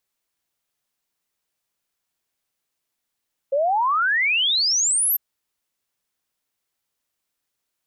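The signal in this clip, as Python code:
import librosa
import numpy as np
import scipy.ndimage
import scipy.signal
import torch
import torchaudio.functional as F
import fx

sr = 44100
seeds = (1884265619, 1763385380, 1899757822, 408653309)

y = fx.ess(sr, length_s=1.65, from_hz=530.0, to_hz=13000.0, level_db=-17.0)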